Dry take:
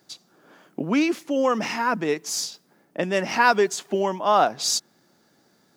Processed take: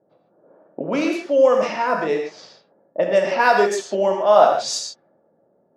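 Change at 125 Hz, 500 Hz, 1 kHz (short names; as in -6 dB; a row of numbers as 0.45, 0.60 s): -2.5, +7.5, +3.0 dB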